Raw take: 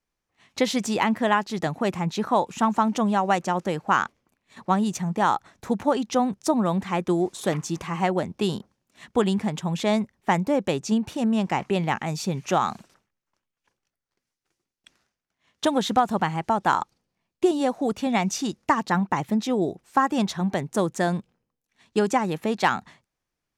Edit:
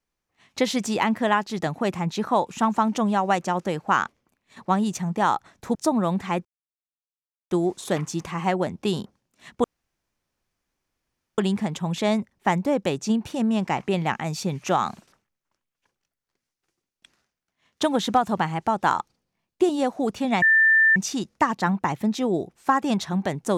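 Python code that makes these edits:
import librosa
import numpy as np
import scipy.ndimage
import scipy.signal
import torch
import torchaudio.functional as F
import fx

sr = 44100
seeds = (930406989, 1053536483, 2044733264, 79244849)

y = fx.edit(x, sr, fx.cut(start_s=5.75, length_s=0.62),
    fx.insert_silence(at_s=7.07, length_s=1.06),
    fx.insert_room_tone(at_s=9.2, length_s=1.74),
    fx.insert_tone(at_s=18.24, length_s=0.54, hz=1780.0, db=-13.5), tone=tone)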